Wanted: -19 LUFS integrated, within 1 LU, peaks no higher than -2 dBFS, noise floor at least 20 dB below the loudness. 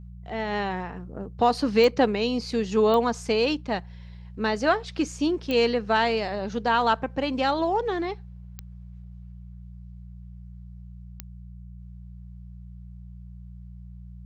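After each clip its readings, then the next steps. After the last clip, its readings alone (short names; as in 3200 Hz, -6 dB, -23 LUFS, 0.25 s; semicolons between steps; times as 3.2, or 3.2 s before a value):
clicks 5; hum 60 Hz; harmonics up to 180 Hz; hum level -40 dBFS; loudness -25.0 LUFS; peak -9.0 dBFS; loudness target -19.0 LUFS
-> de-click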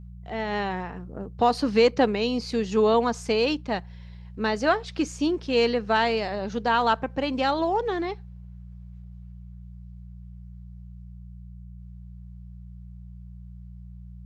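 clicks 0; hum 60 Hz; harmonics up to 180 Hz; hum level -40 dBFS
-> de-hum 60 Hz, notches 3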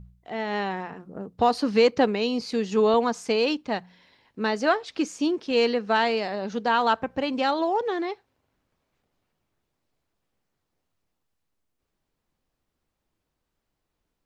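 hum none; loudness -25.0 LUFS; peak -9.0 dBFS; loudness target -19.0 LUFS
-> gain +6 dB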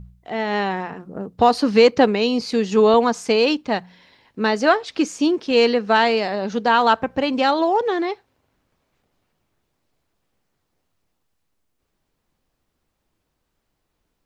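loudness -19.0 LUFS; peak -3.0 dBFS; noise floor -74 dBFS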